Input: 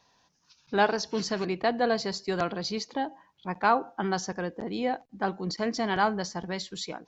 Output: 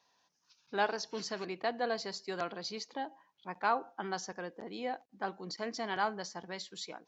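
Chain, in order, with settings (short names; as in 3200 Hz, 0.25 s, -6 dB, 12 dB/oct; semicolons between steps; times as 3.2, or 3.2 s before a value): HPF 380 Hz 6 dB/oct; gain -6.5 dB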